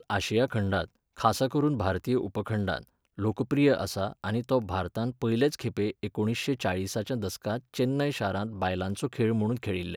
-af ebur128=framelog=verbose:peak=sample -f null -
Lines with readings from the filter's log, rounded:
Integrated loudness:
  I:         -29.1 LUFS
  Threshold: -39.2 LUFS
Loudness range:
  LRA:         1.9 LU
  Threshold: -49.3 LUFS
  LRA low:   -30.3 LUFS
  LRA high:  -28.4 LUFS
Sample peak:
  Peak:       -8.0 dBFS